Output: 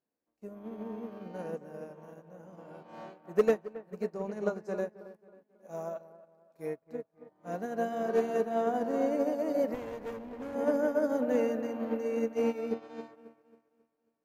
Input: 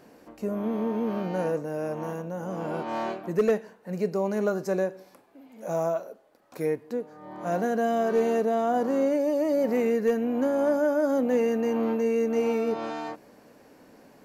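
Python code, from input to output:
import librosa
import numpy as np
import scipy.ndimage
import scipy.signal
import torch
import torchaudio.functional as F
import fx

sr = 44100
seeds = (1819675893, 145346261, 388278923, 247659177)

y = fx.lowpass(x, sr, hz=9300.0, slope=12, at=(4.1, 4.77))
y = fx.echo_wet_lowpass(y, sr, ms=271, feedback_pct=67, hz=2300.0, wet_db=-7)
y = fx.dmg_crackle(y, sr, seeds[0], per_s=270.0, level_db=-54.0)
y = fx.low_shelf(y, sr, hz=85.0, db=9.0, at=(6.82, 7.66))
y = fx.clip_asym(y, sr, top_db=-31.0, bottom_db=-19.0, at=(9.74, 10.55))
y = fx.upward_expand(y, sr, threshold_db=-43.0, expansion=2.5)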